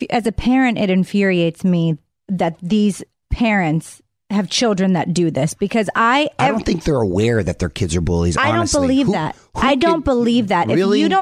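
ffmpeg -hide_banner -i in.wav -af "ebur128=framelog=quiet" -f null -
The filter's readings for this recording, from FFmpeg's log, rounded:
Integrated loudness:
  I:         -17.0 LUFS
  Threshold: -27.2 LUFS
Loudness range:
  LRA:         2.5 LU
  Threshold: -37.5 LUFS
  LRA low:   -18.9 LUFS
  LRA high:  -16.4 LUFS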